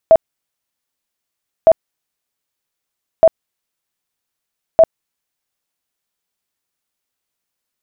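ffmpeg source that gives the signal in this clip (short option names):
-f lavfi -i "aevalsrc='0.708*sin(2*PI*652*mod(t,1.56))*lt(mod(t,1.56),31/652)':d=6.24:s=44100"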